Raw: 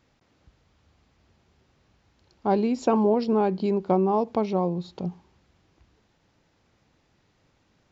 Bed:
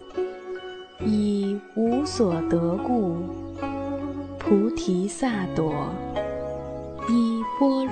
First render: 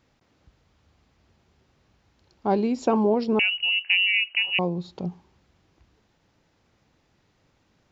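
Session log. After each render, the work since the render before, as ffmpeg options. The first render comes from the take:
-filter_complex "[0:a]asettb=1/sr,asplit=3[a][b][c];[a]atrim=end=3.394[d];[b]atrim=start=3.39:end=4.59,asetpts=PTS-STARTPTS,afade=t=in:d=0.004:c=qsin,afade=t=out:st=1.196:d=0.004:c=qsin,lowpass=f=2.6k:t=q:w=0.5098,lowpass=f=2.6k:t=q:w=0.6013,lowpass=f=2.6k:t=q:w=0.9,lowpass=f=2.6k:t=q:w=2.563,afreqshift=-3100[e];[c]atrim=start=4.586[f];[d][e]acrossfade=d=0.004:c1=hsin:c2=qsin[g];[g][f]acrossfade=d=0.004:c1=qsin:c2=hsin"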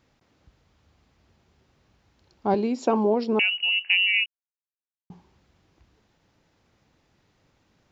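-filter_complex "[0:a]asettb=1/sr,asplit=3[a][b][c];[a]atrim=end=2.544[d];[b]atrim=start=2.54:end=3.68,asetpts=PTS-STARTPTS,afade=t=in:d=0.004:c=qsin,afade=t=out:st=1.136:d=0.004:c=qsin,highpass=190[e];[c]atrim=start=3.676[f];[d][e]acrossfade=d=0.004:c1=hsin:c2=qsin[g];[g][f]acrossfade=d=0.004:c1=qsin:c2=hsin,asplit=3[h][i][j];[h]atrim=end=4.26,asetpts=PTS-STARTPTS,afade=t=out:st=4.256:d=0.004:c=hsin[k];[i]atrim=start=4.26:end=5.1,asetpts=PTS-STARTPTS,volume=0[l];[j]atrim=start=5.1,asetpts=PTS-STARTPTS,afade=t=in:d=0.004:c=hsin[m];[k][l][m]concat=n=3:v=0:a=1"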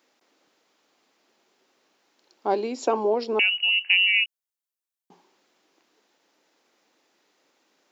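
-af "highpass=f=290:w=0.5412,highpass=f=290:w=1.3066,highshelf=f=4.8k:g=7"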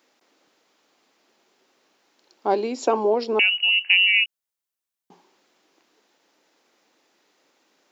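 -af "volume=2.5dB"

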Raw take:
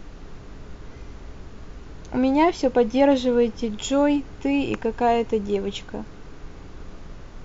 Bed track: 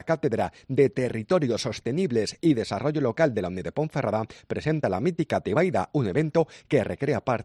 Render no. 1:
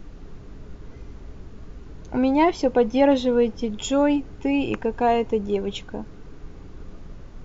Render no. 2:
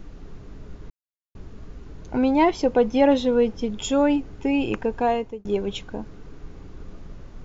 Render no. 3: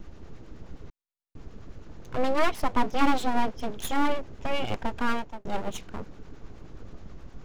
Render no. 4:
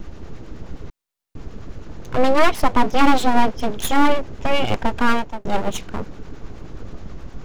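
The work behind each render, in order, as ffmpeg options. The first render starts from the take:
-af "afftdn=nr=6:nf=-42"
-filter_complex "[0:a]asplit=4[a][b][c][d];[a]atrim=end=0.9,asetpts=PTS-STARTPTS,afade=t=out:st=0.896:d=0.004:c=hsin[e];[b]atrim=start=0.9:end=1.35,asetpts=PTS-STARTPTS,volume=0[f];[c]atrim=start=1.35:end=5.45,asetpts=PTS-STARTPTS,afade=t=in:d=0.004:c=hsin,afade=t=out:st=3.48:d=0.62:c=qsin[g];[d]atrim=start=5.45,asetpts=PTS-STARTPTS,afade=t=in:d=0.004:c=hsin[h];[e][f][g][h]concat=n=4:v=0:a=1"
-filter_complex "[0:a]acrossover=split=530[a][b];[a]aeval=exprs='val(0)*(1-0.5/2+0.5/2*cos(2*PI*9.5*n/s))':c=same[c];[b]aeval=exprs='val(0)*(1-0.5/2-0.5/2*cos(2*PI*9.5*n/s))':c=same[d];[c][d]amix=inputs=2:normalize=0,aeval=exprs='abs(val(0))':c=same"
-af "volume=9.5dB,alimiter=limit=-3dB:level=0:latency=1"

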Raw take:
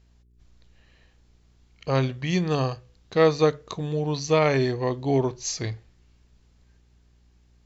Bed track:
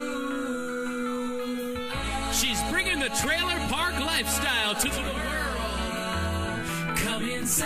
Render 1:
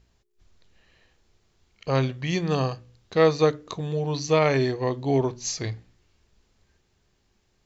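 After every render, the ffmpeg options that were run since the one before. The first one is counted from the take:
-af "bandreject=f=60:t=h:w=4,bandreject=f=120:t=h:w=4,bandreject=f=180:t=h:w=4,bandreject=f=240:t=h:w=4,bandreject=f=300:t=h:w=4"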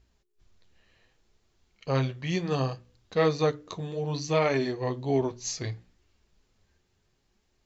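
-af "flanger=delay=2.7:depth=9.1:regen=-38:speed=0.66:shape=triangular"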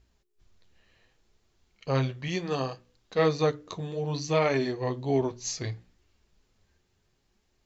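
-filter_complex "[0:a]asettb=1/sr,asplit=3[a][b][c];[a]atrim=end=2.284[d];[b]atrim=start=2.28:end=3.19,asetpts=PTS-STARTPTS,afade=t=in:d=0.004:c=qsin,afade=t=out:st=0.906:d=0.004:c=qsin,equalizer=f=91:t=o:w=1.6:g=-10.5[e];[c]atrim=start=3.186[f];[d][e]acrossfade=d=0.004:c1=hsin:c2=qsin[g];[g][f]acrossfade=d=0.004:c1=qsin:c2=hsin"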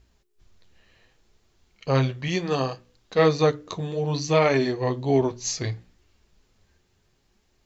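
-af "volume=5dB"

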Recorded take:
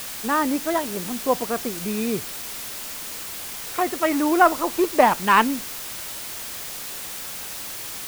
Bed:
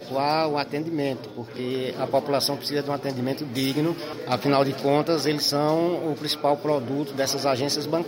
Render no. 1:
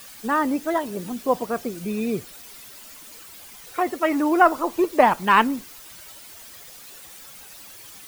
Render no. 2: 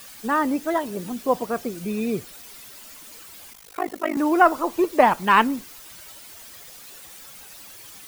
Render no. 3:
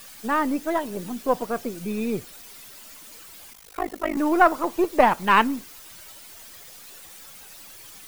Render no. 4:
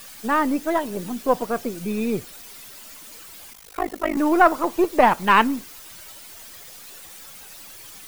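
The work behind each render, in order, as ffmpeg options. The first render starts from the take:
-af "afftdn=nr=12:nf=-34"
-filter_complex "[0:a]asettb=1/sr,asplit=3[a][b][c];[a]atrim=end=3.534[d];[b]atrim=start=3.53:end=4.17,asetpts=PTS-STARTPTS,afade=t=in:d=0.004:c=qsin,afade=t=out:st=0.636:d=0.004:c=qsin,tremolo=f=51:d=1[e];[c]atrim=start=4.166[f];[d][e]acrossfade=d=0.004:c1=hsin:c2=qsin[g];[g][f]acrossfade=d=0.004:c1=qsin:c2=hsin"
-af "aeval=exprs='if(lt(val(0),0),0.708*val(0),val(0))':c=same"
-af "volume=2.5dB,alimiter=limit=-3dB:level=0:latency=1"

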